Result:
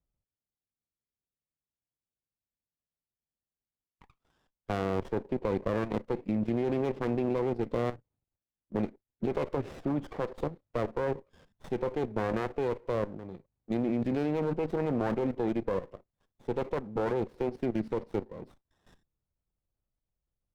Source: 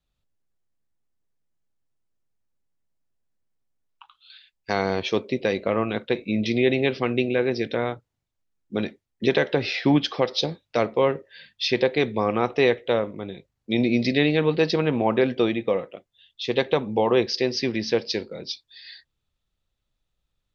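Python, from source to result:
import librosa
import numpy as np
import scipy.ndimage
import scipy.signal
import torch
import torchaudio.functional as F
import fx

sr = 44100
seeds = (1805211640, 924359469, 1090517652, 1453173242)

y = scipy.signal.sosfilt(scipy.signal.butter(2, 1300.0, 'lowpass', fs=sr, output='sos'), x)
y = fx.level_steps(y, sr, step_db=14)
y = fx.running_max(y, sr, window=17)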